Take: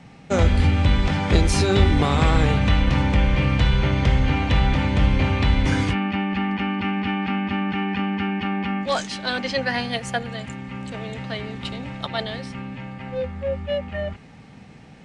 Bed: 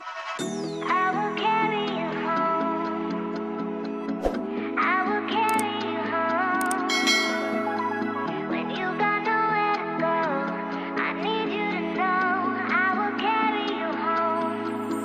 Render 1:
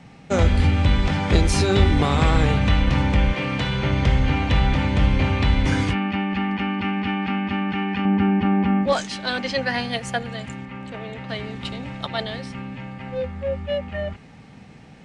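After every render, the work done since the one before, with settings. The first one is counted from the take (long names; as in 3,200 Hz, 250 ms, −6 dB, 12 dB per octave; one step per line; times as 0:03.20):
0:03.32–0:03.88: high-pass filter 290 Hz → 81 Hz
0:08.05–0:08.93: tilt shelving filter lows +7 dB, about 1,400 Hz
0:10.65–0:11.29: bass and treble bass −4 dB, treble −10 dB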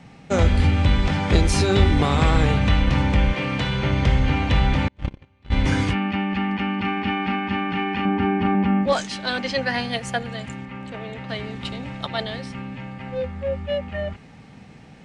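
0:04.88–0:05.52: noise gate −14 dBFS, range −39 dB
0:06.80–0:08.55: double-tracking delay 38 ms −5 dB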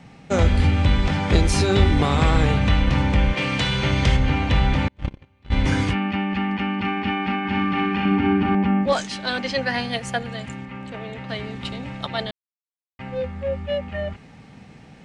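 0:03.37–0:04.17: high-shelf EQ 3,000 Hz +10 dB
0:07.39–0:08.55: flutter between parallel walls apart 10.6 metres, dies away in 0.88 s
0:12.31–0:12.99: silence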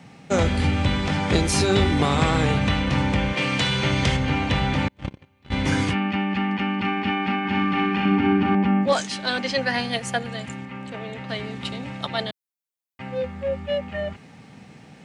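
high-pass filter 100 Hz 12 dB per octave
high-shelf EQ 8,200 Hz +7 dB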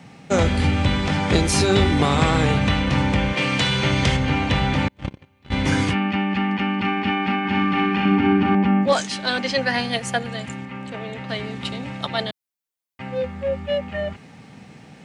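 level +2 dB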